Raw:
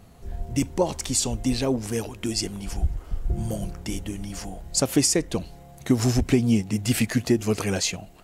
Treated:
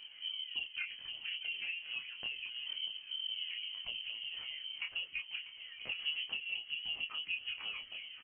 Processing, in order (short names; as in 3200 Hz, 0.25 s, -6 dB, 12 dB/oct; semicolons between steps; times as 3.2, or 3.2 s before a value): repeated pitch sweeps +10.5 st, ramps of 0.273 s; high shelf 2100 Hz -11 dB; compressor 3:1, threshold -41 dBFS, peak gain reduction 19 dB; flange 1.5 Hz, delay 5.1 ms, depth 6.4 ms, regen +39%; inverted band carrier 3100 Hz; doubler 26 ms -5 dB; swung echo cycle 1.07 s, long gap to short 1.5:1, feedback 31%, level -15 dB; gain +1 dB